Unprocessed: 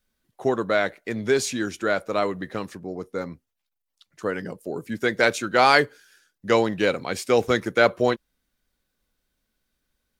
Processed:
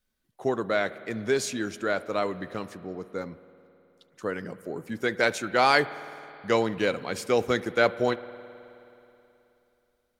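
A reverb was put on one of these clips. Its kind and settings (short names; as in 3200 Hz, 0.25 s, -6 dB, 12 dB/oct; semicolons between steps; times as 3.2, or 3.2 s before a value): spring tank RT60 3.1 s, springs 53 ms, chirp 25 ms, DRR 15.5 dB; gain -4 dB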